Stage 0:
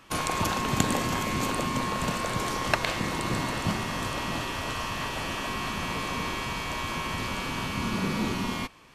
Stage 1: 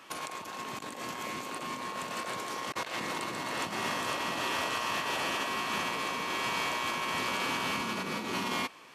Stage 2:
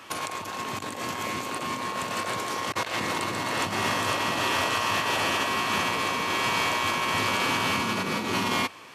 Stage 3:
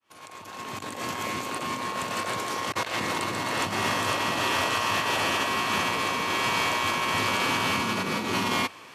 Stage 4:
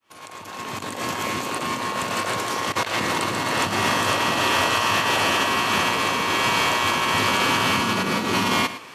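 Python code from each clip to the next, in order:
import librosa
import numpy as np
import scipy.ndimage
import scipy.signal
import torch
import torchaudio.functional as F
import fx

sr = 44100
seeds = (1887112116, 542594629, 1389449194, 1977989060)

y1 = scipy.signal.sosfilt(scipy.signal.bessel(2, 170.0, 'highpass', norm='mag', fs=sr, output='sos'), x)
y1 = fx.bass_treble(y1, sr, bass_db=-8, treble_db=-1)
y1 = fx.over_compress(y1, sr, threshold_db=-34.0, ratio=-0.5)
y2 = fx.peak_eq(y1, sr, hz=100.0, db=11.5, octaves=0.34)
y2 = y2 * librosa.db_to_amplitude(6.5)
y3 = fx.fade_in_head(y2, sr, length_s=1.05)
y4 = y3 + 10.0 ** (-13.5 / 20.0) * np.pad(y3, (int(109 * sr / 1000.0), 0))[:len(y3)]
y4 = y4 * librosa.db_to_amplitude(5.0)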